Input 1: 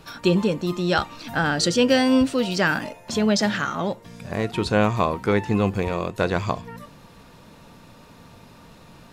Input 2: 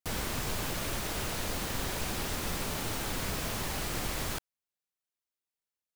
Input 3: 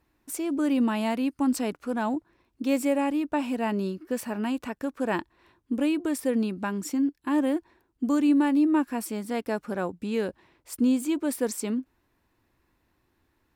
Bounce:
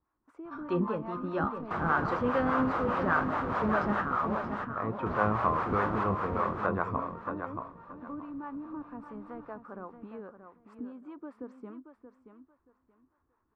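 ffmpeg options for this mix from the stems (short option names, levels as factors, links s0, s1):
-filter_complex "[0:a]flanger=delay=8.1:depth=6:regen=74:speed=0.23:shape=sinusoidal,adelay=450,volume=0.422,asplit=2[s0][s1];[s1]volume=0.422[s2];[1:a]highpass=81,adelay=1650,volume=0.891,asplit=3[s3][s4][s5];[s3]atrim=end=4.02,asetpts=PTS-STARTPTS,afade=t=out:st=4.016:d=0.004:c=hsin[s6];[s4]atrim=start=4.02:end=5.06,asetpts=PTS-STARTPTS,volume=0[s7];[s5]atrim=start=5.06,asetpts=PTS-STARTPTS,afade=t=in:d=0.004:c=hsin[s8];[s6][s7][s8]concat=n=3:v=0:a=1,asplit=2[s9][s10];[s10]volume=0.708[s11];[2:a]acompressor=threshold=0.0251:ratio=4,volume=0.299,asplit=2[s12][s13];[s13]volume=0.316[s14];[s2][s11][s14]amix=inputs=3:normalize=0,aecho=0:1:628|1256|1884:1|0.21|0.0441[s15];[s0][s9][s12][s15]amix=inputs=4:normalize=0,acrossover=split=450[s16][s17];[s16]aeval=exprs='val(0)*(1-0.7/2+0.7/2*cos(2*PI*4.9*n/s))':c=same[s18];[s17]aeval=exprs='val(0)*(1-0.7/2-0.7/2*cos(2*PI*4.9*n/s))':c=same[s19];[s18][s19]amix=inputs=2:normalize=0,dynaudnorm=f=110:g=7:m=1.58,lowpass=f=1200:t=q:w=3.7"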